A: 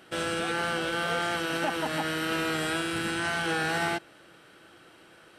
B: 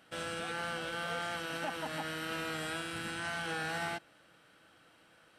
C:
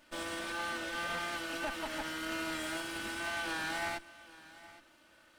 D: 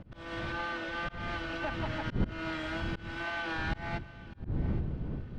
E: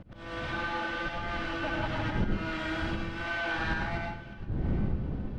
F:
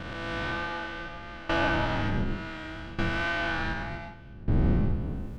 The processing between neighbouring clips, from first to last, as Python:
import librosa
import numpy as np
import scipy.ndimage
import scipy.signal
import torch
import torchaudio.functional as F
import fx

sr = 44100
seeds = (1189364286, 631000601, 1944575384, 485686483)

y1 = fx.peak_eq(x, sr, hz=370.0, db=-12.5, octaves=0.23)
y1 = y1 * 10.0 ** (-8.0 / 20.0)
y2 = fx.lower_of_two(y1, sr, delay_ms=3.3)
y2 = y2 + 10.0 ** (-18.5 / 20.0) * np.pad(y2, (int(817 * sr / 1000.0), 0))[:len(y2)]
y2 = y2 * 10.0 ** (1.5 / 20.0)
y3 = fx.dmg_wind(y2, sr, seeds[0], corner_hz=150.0, level_db=-34.0)
y3 = fx.air_absorb(y3, sr, metres=210.0)
y3 = fx.auto_swell(y3, sr, attack_ms=228.0)
y3 = y3 * 10.0 ** (3.0 / 20.0)
y4 = fx.rev_plate(y3, sr, seeds[1], rt60_s=0.54, hf_ratio=0.75, predelay_ms=85, drr_db=-0.5)
y5 = fx.spec_swells(y4, sr, rise_s=1.61)
y5 = fx.tremolo_decay(y5, sr, direction='decaying', hz=0.67, depth_db=18)
y5 = y5 * 10.0 ** (5.5 / 20.0)